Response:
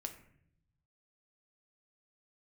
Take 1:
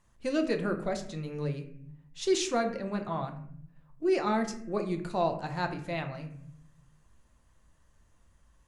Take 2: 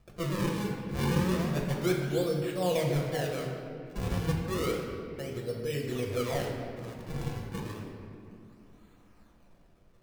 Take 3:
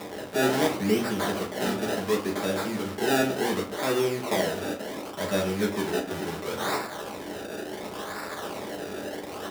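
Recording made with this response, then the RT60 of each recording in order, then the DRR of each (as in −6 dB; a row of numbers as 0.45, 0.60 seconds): 1; 0.65, 2.7, 0.45 seconds; 5.0, −1.0, −1.5 decibels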